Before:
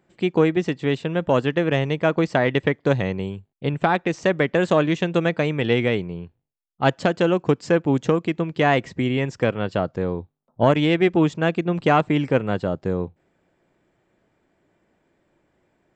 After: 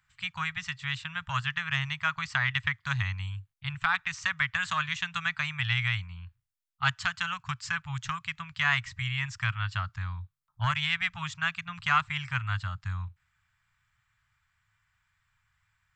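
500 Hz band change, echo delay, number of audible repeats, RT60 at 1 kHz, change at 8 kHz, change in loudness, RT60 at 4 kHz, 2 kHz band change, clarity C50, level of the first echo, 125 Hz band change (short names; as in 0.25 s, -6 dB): -35.5 dB, none, none, none, n/a, -9.0 dB, none, -0.5 dB, none, none, -8.5 dB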